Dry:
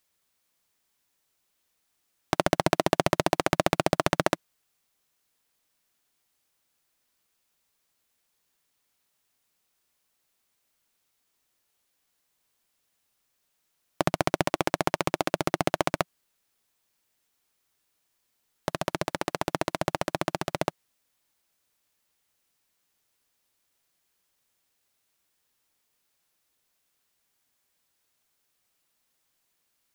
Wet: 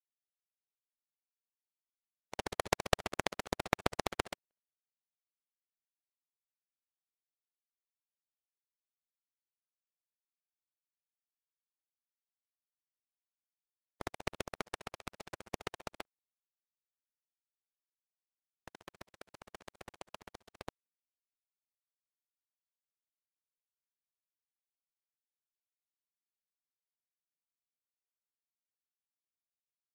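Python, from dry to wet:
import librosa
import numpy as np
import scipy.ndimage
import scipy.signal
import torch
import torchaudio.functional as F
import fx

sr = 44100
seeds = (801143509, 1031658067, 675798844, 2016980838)

y = fx.echo_tape(x, sr, ms=247, feedback_pct=25, wet_db=-19, lp_hz=2700.0, drive_db=-2.0, wow_cents=40)
y = fx.pitch_keep_formants(y, sr, semitones=-9.0)
y = fx.power_curve(y, sr, exponent=3.0)
y = F.gain(torch.from_numpy(y), 3.5).numpy()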